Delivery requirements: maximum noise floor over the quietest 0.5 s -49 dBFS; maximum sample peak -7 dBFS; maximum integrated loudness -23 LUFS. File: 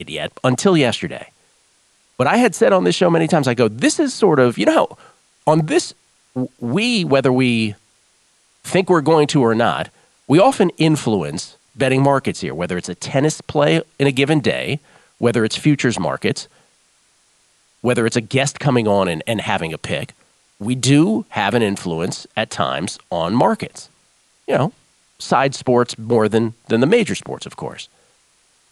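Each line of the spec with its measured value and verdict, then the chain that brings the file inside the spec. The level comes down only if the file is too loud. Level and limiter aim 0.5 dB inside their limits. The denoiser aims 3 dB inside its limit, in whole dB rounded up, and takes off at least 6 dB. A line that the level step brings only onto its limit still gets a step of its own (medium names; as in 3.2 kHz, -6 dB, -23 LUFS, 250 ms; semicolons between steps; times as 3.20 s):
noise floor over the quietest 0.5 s -58 dBFS: pass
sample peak -2.0 dBFS: fail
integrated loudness -17.5 LUFS: fail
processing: trim -6 dB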